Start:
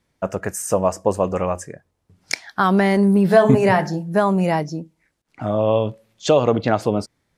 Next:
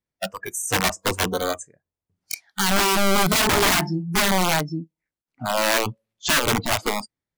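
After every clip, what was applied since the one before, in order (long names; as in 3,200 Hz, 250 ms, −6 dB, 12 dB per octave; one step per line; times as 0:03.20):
wrap-around overflow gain 13.5 dB
noise reduction from a noise print of the clip's start 20 dB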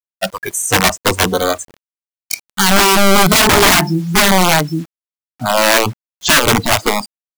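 bit reduction 8 bits
level +9 dB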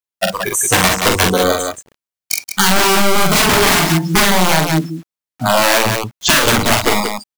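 on a send: loudspeakers that aren't time-aligned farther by 15 metres −4 dB, 61 metres −8 dB
on the sum: downward compressor, threshold −11 dBFS, peak gain reduction 7.5 dB
level +2 dB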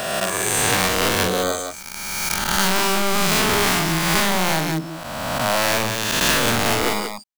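peak hold with a rise ahead of every peak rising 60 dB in 2.03 s
level −10 dB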